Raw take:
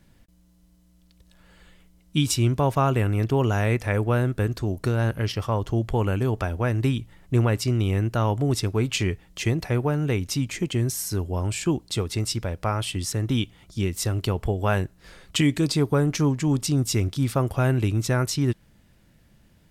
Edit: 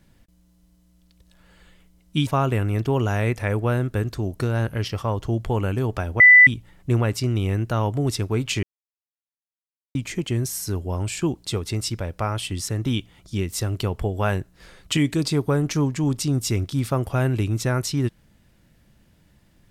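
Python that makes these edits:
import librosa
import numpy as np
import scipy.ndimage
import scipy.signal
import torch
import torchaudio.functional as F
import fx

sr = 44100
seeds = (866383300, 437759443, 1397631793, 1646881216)

y = fx.edit(x, sr, fx.cut(start_s=2.27, length_s=0.44),
    fx.bleep(start_s=6.64, length_s=0.27, hz=1990.0, db=-6.5),
    fx.silence(start_s=9.07, length_s=1.32), tone=tone)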